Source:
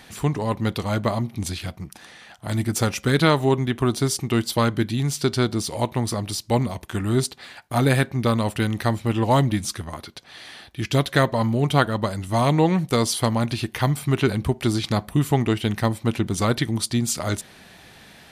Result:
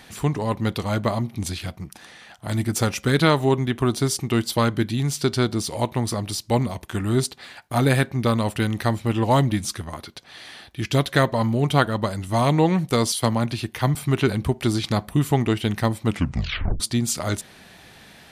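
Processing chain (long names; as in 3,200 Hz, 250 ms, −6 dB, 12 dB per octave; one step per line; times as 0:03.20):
0:13.12–0:13.95: multiband upward and downward expander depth 40%
0:16.06: tape stop 0.74 s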